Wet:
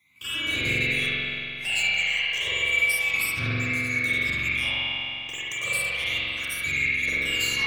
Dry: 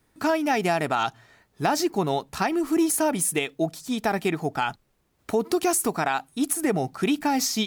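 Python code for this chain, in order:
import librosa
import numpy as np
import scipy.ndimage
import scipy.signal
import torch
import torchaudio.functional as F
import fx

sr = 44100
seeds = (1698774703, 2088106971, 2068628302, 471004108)

p1 = fx.band_swap(x, sr, width_hz=2000)
p2 = scipy.signal.sosfilt(scipy.signal.butter(4, 80.0, 'highpass', fs=sr, output='sos'), p1)
p3 = fx.low_shelf(p2, sr, hz=160.0, db=11.5)
p4 = 10.0 ** (-25.0 / 20.0) * np.tanh(p3 / 10.0 ** (-25.0 / 20.0))
p5 = fx.phaser_stages(p4, sr, stages=12, low_hz=240.0, high_hz=1000.0, hz=0.33, feedback_pct=25)
p6 = p5 + fx.echo_filtered(p5, sr, ms=72, feedback_pct=67, hz=2100.0, wet_db=-4, dry=0)
p7 = fx.rev_spring(p6, sr, rt60_s=3.0, pass_ms=(44,), chirp_ms=20, drr_db=-8.5)
y = p7 * 10.0 ** (-1.0 / 20.0)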